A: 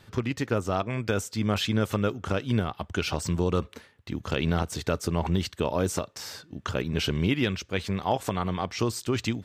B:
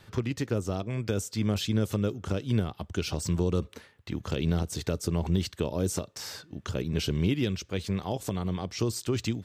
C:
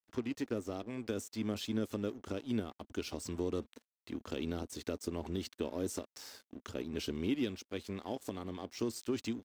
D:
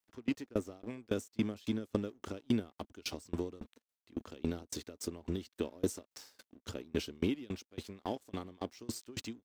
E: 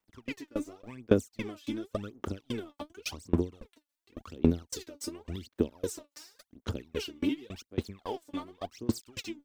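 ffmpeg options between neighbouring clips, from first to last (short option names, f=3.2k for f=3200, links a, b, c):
-filter_complex "[0:a]equalizer=f=250:w=5.1:g=-3,acrossover=split=510|3600[a][b][c];[b]acompressor=threshold=-41dB:ratio=6[d];[a][d][c]amix=inputs=3:normalize=0"
-af "aeval=exprs='sgn(val(0))*max(abs(val(0))-0.00501,0)':c=same,lowshelf=f=200:t=q:w=3:g=-6,volume=-7.5dB"
-af "aeval=exprs='val(0)*pow(10,-30*if(lt(mod(3.6*n/s,1),2*abs(3.6)/1000),1-mod(3.6*n/s,1)/(2*abs(3.6)/1000),(mod(3.6*n/s,1)-2*abs(3.6)/1000)/(1-2*abs(3.6)/1000))/20)':c=same,volume=8dB"
-af "aphaser=in_gain=1:out_gain=1:delay=3.5:decay=0.79:speed=0.9:type=sinusoidal,volume=-1.5dB"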